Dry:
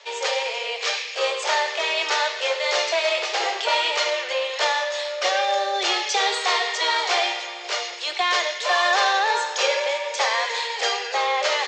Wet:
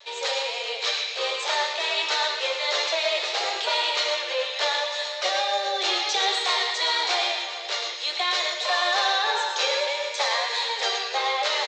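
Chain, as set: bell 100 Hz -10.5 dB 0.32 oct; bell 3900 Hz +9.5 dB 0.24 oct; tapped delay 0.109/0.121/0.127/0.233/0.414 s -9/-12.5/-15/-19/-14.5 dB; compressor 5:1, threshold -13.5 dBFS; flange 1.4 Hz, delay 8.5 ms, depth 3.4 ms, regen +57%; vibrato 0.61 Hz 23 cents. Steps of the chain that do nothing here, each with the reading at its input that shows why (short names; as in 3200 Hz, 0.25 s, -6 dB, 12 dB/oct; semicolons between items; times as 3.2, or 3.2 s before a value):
bell 100 Hz: input band starts at 320 Hz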